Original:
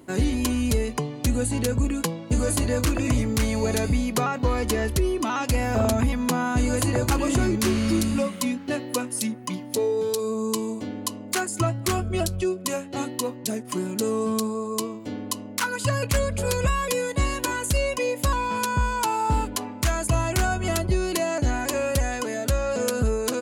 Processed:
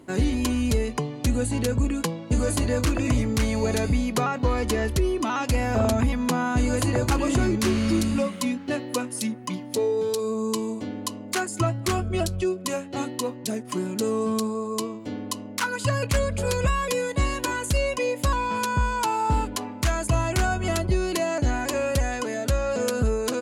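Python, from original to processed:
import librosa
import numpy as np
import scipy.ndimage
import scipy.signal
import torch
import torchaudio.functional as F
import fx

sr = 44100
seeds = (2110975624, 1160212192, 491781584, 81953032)

y = fx.high_shelf(x, sr, hz=11000.0, db=-9.5)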